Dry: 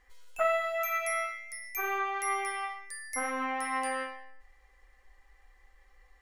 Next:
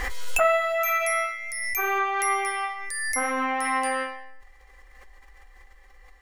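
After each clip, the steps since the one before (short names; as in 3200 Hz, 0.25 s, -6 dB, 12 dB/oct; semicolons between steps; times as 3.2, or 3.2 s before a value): backwards sustainer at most 26 dB/s; gain +6.5 dB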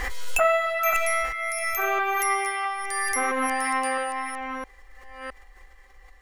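reverse delay 0.663 s, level -6.5 dB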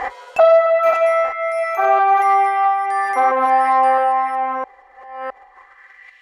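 sine folder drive 6 dB, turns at -9.5 dBFS; band-pass sweep 750 Hz -> 2800 Hz, 5.42–6.21; gain +7 dB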